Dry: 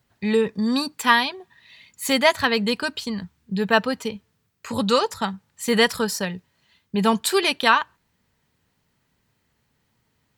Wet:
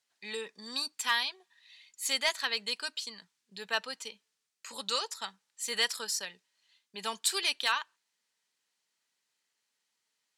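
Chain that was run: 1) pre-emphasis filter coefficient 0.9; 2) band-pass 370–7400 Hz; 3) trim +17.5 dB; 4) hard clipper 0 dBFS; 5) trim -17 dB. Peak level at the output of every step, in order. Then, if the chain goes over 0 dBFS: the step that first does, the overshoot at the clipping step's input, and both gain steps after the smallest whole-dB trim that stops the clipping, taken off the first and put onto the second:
-10.5 dBFS, -13.0 dBFS, +4.5 dBFS, 0.0 dBFS, -17.0 dBFS; step 3, 4.5 dB; step 3 +12.5 dB, step 5 -12 dB

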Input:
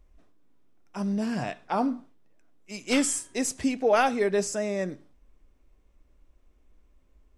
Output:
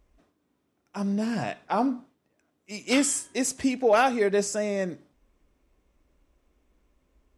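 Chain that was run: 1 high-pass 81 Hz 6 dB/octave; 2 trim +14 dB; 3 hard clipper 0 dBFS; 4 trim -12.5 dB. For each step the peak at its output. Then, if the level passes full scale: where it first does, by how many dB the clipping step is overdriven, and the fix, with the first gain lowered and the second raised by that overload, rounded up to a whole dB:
-10.5 dBFS, +3.5 dBFS, 0.0 dBFS, -12.5 dBFS; step 2, 3.5 dB; step 2 +10 dB, step 4 -8.5 dB

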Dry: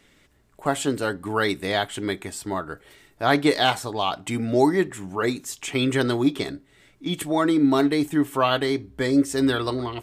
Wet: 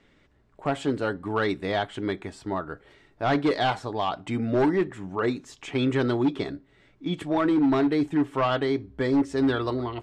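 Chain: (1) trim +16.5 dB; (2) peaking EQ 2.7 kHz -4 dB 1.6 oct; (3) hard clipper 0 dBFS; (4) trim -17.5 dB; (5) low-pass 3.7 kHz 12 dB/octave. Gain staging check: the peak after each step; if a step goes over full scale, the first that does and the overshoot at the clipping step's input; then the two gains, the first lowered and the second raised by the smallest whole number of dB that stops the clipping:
+9.5 dBFS, +9.5 dBFS, 0.0 dBFS, -17.5 dBFS, -17.0 dBFS; step 1, 9.5 dB; step 1 +6.5 dB, step 4 -7.5 dB

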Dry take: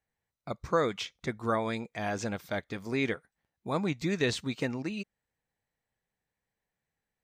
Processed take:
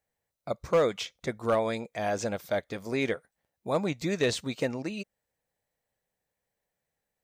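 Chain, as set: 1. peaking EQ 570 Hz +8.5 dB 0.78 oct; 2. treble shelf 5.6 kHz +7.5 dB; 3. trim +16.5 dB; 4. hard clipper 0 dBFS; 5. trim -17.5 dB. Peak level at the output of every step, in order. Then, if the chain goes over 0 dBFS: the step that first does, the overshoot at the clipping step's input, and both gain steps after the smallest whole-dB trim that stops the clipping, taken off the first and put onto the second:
-10.5 dBFS, -10.0 dBFS, +6.5 dBFS, 0.0 dBFS, -17.5 dBFS; step 3, 6.5 dB; step 3 +9.5 dB, step 5 -10.5 dB

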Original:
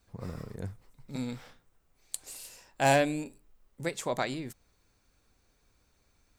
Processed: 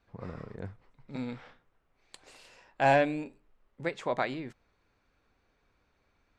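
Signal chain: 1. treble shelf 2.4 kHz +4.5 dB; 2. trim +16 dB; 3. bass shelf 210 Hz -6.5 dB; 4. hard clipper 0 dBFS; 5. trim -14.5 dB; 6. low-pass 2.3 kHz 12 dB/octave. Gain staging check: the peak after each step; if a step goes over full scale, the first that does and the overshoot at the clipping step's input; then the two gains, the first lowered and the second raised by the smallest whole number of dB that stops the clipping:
-11.5 dBFS, +4.5 dBFS, +6.0 dBFS, 0.0 dBFS, -14.5 dBFS, -14.0 dBFS; step 2, 6.0 dB; step 2 +10 dB, step 5 -8.5 dB

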